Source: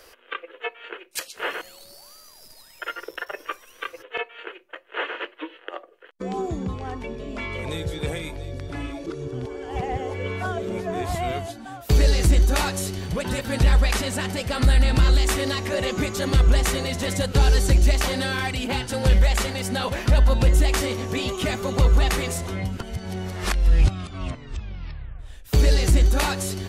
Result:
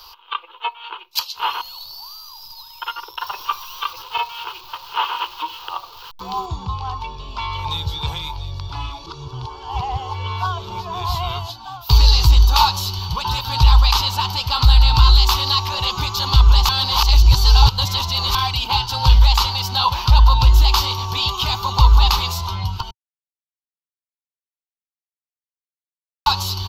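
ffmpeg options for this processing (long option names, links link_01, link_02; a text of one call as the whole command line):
ffmpeg -i in.wav -filter_complex "[0:a]asettb=1/sr,asplit=3[link_01][link_02][link_03];[link_01]atrim=end=3.214[link_04];[link_02]atrim=start=3.21:end=6.46,asetpts=PTS-STARTPTS,afade=type=in:duration=0.004:curve=qsin,afade=type=out:start_time=3.246:duration=0.004:curve=qsin,aeval=exprs='val(0)+0.5*0.01*sgn(val(0))':channel_layout=same[link_05];[link_03]atrim=start=6.456[link_06];[link_04][link_05]acrossfade=duration=0.004:curve1=hsin:curve2=qsin[link_07];[link_07][link_06]acrossfade=duration=0.004:curve1=qsin:curve2=hsin,asplit=5[link_08][link_09][link_10][link_11][link_12];[link_08]atrim=end=16.692[link_13];[link_09]atrim=start=16.688:end=18.352,asetpts=PTS-STARTPTS,areverse[link_14];[link_10]atrim=start=18.348:end=22.91,asetpts=PTS-STARTPTS,afade=type=out:start_time=4.558:duration=0.004:curve=hsin[link_15];[link_11]atrim=start=22.91:end=26.26,asetpts=PTS-STARTPTS,volume=0[link_16];[link_12]atrim=start=26.26,asetpts=PTS-STARTPTS,afade=type=in:duration=0.004:curve=hsin[link_17];[link_13][link_14]acrossfade=duration=0.004:curve1=hsin:curve2=hsin[link_18];[link_15][link_16][link_17]concat=n=3:v=0:a=1[link_19];[link_18][link_19]acrossfade=duration=0.004:curve1=hsin:curve2=hsin,firequalizer=gain_entry='entry(110,0);entry(240,-21);entry(360,-14);entry(600,-18);entry(920,13);entry(1800,-17);entry(2800,3);entry(4400,10);entry(9100,-20);entry(13000,5)':delay=0.05:min_phase=1,volume=5.5dB" out.wav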